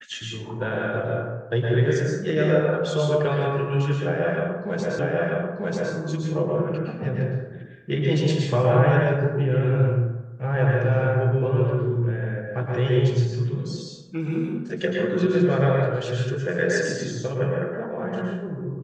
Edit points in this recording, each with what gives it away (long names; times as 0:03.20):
0:04.99: the same again, the last 0.94 s